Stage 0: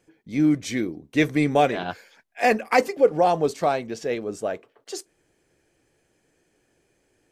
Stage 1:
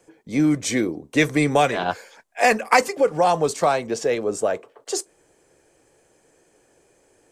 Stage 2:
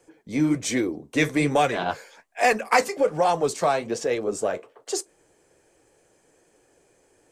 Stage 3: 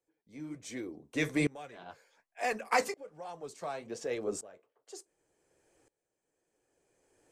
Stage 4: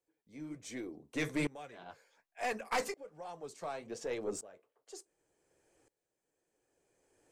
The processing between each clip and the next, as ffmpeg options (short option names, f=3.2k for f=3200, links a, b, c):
-filter_complex "[0:a]equalizer=f=500:t=o:w=1:g=7,equalizer=f=1k:t=o:w=1:g=7,equalizer=f=8k:t=o:w=1:g=9,acrossover=split=210|1100|1900[a][b][c][d];[b]acompressor=threshold=-22dB:ratio=6[e];[a][e][c][d]amix=inputs=4:normalize=0,volume=2.5dB"
-filter_complex "[0:a]asplit=2[a][b];[b]asoftclip=type=tanh:threshold=-18.5dB,volume=-11dB[c];[a][c]amix=inputs=2:normalize=0,flanger=delay=2.3:depth=9.8:regen=-57:speed=1.2:shape=sinusoidal"
-af "aeval=exprs='val(0)*pow(10,-22*if(lt(mod(-0.68*n/s,1),2*abs(-0.68)/1000),1-mod(-0.68*n/s,1)/(2*abs(-0.68)/1000),(mod(-0.68*n/s,1)-2*abs(-0.68)/1000)/(1-2*abs(-0.68)/1000))/20)':c=same,volume=-6dB"
-af "aeval=exprs='(tanh(17.8*val(0)+0.25)-tanh(0.25))/17.8':c=same,volume=-1.5dB"